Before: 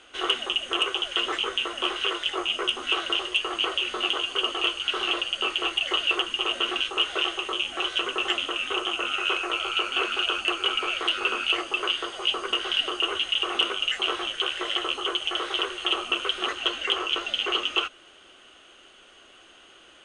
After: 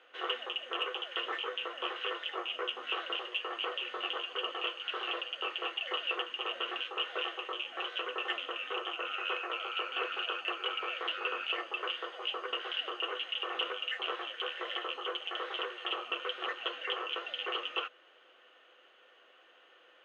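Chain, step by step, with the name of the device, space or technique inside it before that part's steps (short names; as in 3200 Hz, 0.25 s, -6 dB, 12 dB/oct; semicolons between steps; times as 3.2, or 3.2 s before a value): tin-can telephone (BPF 480–2600 Hz; small resonant body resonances 500/1800 Hz, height 12 dB, ringing for 95 ms); gain -7 dB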